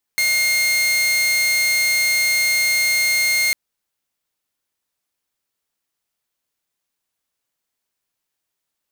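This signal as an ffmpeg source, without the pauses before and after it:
-f lavfi -i "aevalsrc='0.224*(2*mod(2130*t,1)-1)':d=3.35:s=44100"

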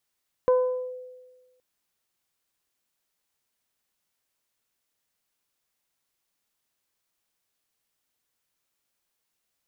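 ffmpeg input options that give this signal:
-f lavfi -i "aevalsrc='0.188*pow(10,-3*t/1.34)*sin(2*PI*505*t+0.54*clip(1-t/0.45,0,1)*sin(2*PI*1*505*t))':d=1.12:s=44100"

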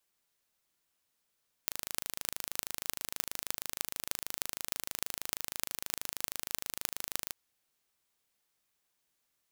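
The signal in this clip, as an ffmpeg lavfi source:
-f lavfi -i "aevalsrc='0.708*eq(mod(n,1677),0)*(0.5+0.5*eq(mod(n,13416),0))':d=5.64:s=44100"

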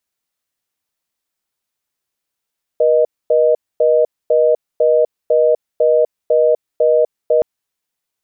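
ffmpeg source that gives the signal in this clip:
-f lavfi -i "aevalsrc='0.251*(sin(2*PI*480*t)+sin(2*PI*620*t))*clip(min(mod(t,0.5),0.25-mod(t,0.5))/0.005,0,1)':d=4.62:s=44100"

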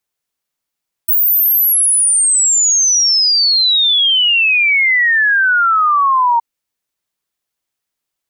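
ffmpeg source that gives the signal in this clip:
-f lavfi -i "aevalsrc='0.355*clip(min(t,5.32-t)/0.01,0,1)*sin(2*PI*16000*5.32/log(920/16000)*(exp(log(920/16000)*t/5.32)-1))':d=5.32:s=44100"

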